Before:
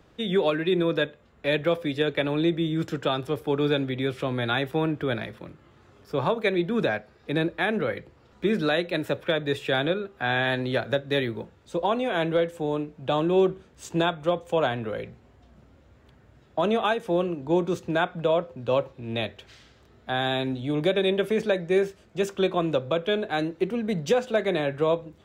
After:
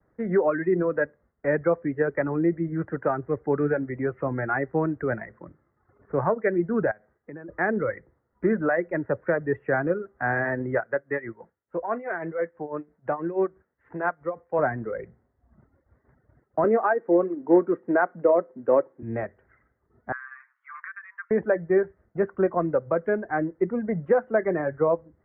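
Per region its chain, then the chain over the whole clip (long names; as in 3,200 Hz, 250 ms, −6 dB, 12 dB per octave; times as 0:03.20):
0:06.91–0:07.49: low-shelf EQ 360 Hz −2.5 dB + downward compressor 10 to 1, threshold −36 dBFS
0:10.80–0:14.59: spectral tilt +2.5 dB per octave + amplitude tremolo 6.1 Hz, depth 61%
0:16.64–0:19.03: high-pass with resonance 300 Hz, resonance Q 1.6 + log-companded quantiser 6 bits
0:20.12–0:21.31: Chebyshev high-pass filter 1,100 Hz, order 6 + high-frequency loss of the air 470 metres + multiband upward and downward compressor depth 100%
whole clip: downward expander −49 dBFS; Chebyshev low-pass filter 2,000 Hz, order 6; reverb reduction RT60 1 s; level +2 dB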